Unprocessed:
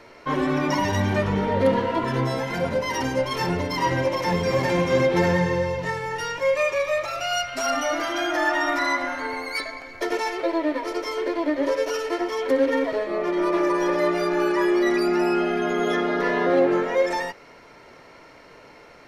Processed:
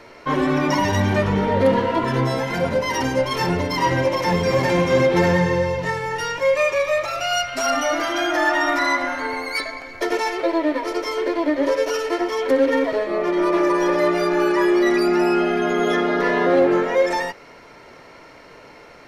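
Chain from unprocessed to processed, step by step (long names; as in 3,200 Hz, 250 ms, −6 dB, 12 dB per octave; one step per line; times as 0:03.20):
in parallel at −6 dB: hard clipping −16 dBFS, distortion −19 dB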